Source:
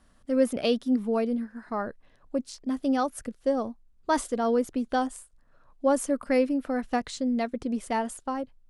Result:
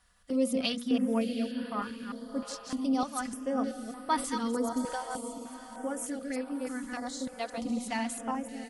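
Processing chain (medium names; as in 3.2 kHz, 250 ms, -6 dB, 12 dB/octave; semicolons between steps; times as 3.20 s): chunks repeated in reverse 163 ms, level -5 dB; high-pass 100 Hz 6 dB/octave; peaking EQ 450 Hz -9 dB 2.1 oct; hum notches 60/120/180/240/300/360/420/480/540 Hz; comb 4.1 ms, depth 58%; 4.85–7.40 s: compression 4:1, threshold -32 dBFS, peak gain reduction 10 dB; echo that smears into a reverb 702 ms, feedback 48%, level -10.5 dB; step-sequenced notch 3.3 Hz 250–6700 Hz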